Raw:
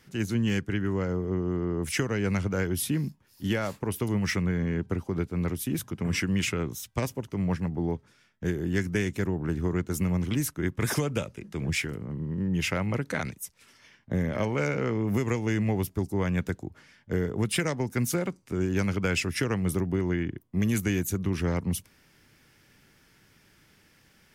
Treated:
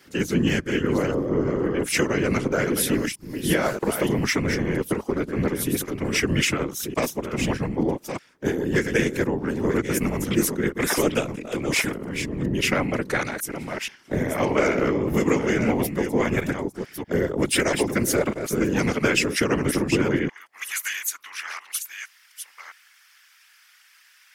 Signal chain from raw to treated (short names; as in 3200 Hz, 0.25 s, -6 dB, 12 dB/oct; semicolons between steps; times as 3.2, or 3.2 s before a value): reverse delay 0.631 s, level -7.5 dB; HPF 200 Hz 24 dB/oct, from 20.29 s 1200 Hz; whisperiser; gain +7 dB